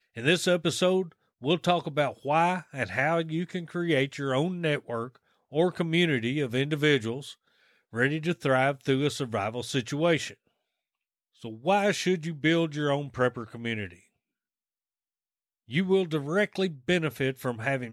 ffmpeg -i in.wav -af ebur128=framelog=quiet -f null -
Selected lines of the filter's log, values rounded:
Integrated loudness:
  I:         -27.5 LUFS
  Threshold: -38.0 LUFS
Loudness range:
  LRA:         3.9 LU
  Threshold: -48.7 LUFS
  LRA low:   -31.1 LUFS
  LRA high:  -27.3 LUFS